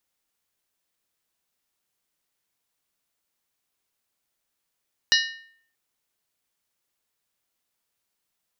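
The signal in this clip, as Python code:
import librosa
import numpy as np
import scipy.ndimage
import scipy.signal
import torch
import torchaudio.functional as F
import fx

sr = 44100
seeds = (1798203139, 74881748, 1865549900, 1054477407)

y = fx.strike_skin(sr, length_s=0.63, level_db=-18.0, hz=1820.0, decay_s=0.61, tilt_db=1.0, modes=7)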